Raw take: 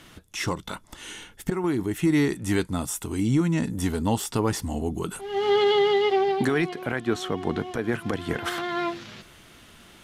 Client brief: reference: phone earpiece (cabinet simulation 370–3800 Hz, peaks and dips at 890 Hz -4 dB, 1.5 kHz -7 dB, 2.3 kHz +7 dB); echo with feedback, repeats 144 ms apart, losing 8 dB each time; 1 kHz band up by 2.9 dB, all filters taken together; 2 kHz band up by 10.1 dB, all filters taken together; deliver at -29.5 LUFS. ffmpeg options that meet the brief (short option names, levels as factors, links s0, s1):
-af "highpass=370,equalizer=f=890:t=q:w=4:g=-4,equalizer=f=1500:t=q:w=4:g=-7,equalizer=f=2300:t=q:w=4:g=7,lowpass=f=3800:w=0.5412,lowpass=f=3800:w=1.3066,equalizer=f=1000:t=o:g=5.5,equalizer=f=2000:t=o:g=9,aecho=1:1:144|288|432|576|720:0.398|0.159|0.0637|0.0255|0.0102,volume=0.531"